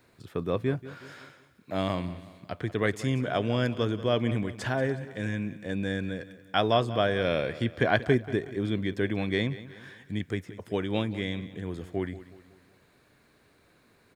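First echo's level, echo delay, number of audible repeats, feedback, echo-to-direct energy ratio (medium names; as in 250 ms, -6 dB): -16.0 dB, 184 ms, 3, 46%, -15.0 dB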